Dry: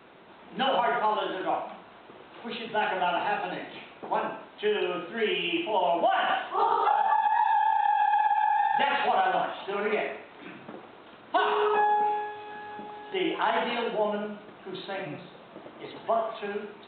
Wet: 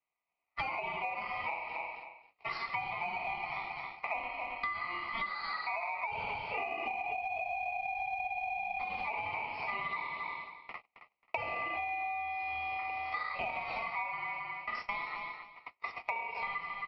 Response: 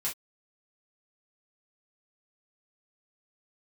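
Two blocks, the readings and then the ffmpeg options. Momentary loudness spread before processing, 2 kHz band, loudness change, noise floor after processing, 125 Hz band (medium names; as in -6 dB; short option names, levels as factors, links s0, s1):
19 LU, -3.0 dB, -9.5 dB, -81 dBFS, no reading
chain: -filter_complex "[0:a]highpass=340,equalizer=f=410:t=q:w=4:g=8,equalizer=f=620:t=q:w=4:g=8,equalizer=f=880:t=q:w=4:g=9,equalizer=f=1900:t=q:w=4:g=-6,lowpass=f=3300:w=0.5412,lowpass=f=3300:w=1.3066,asplit=2[s0][s1];[s1]asoftclip=type=hard:threshold=0.1,volume=0.355[s2];[s0][s2]amix=inputs=2:normalize=0,aeval=exprs='val(0)*sin(2*PI*1600*n/s)':c=same,agate=range=0.00708:threshold=0.0158:ratio=16:detection=peak,acrossover=split=2600[s3][s4];[s4]acompressor=threshold=0.0158:ratio=4:attack=1:release=60[s5];[s3][s5]amix=inputs=2:normalize=0,aecho=1:1:269|538:0.266|0.0479,acompressor=threshold=0.0224:ratio=20"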